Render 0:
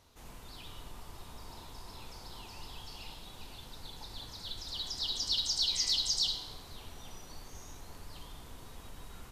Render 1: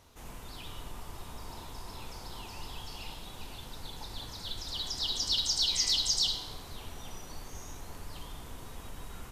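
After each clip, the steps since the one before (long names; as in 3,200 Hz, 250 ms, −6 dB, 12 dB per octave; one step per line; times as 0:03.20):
parametric band 4,300 Hz −3.5 dB 0.55 octaves
level +4.5 dB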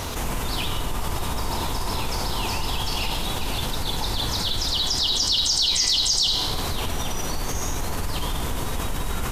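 envelope flattener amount 70%
level +6 dB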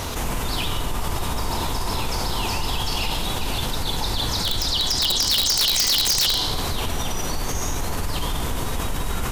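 wrap-around overflow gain 13 dB
level +1.5 dB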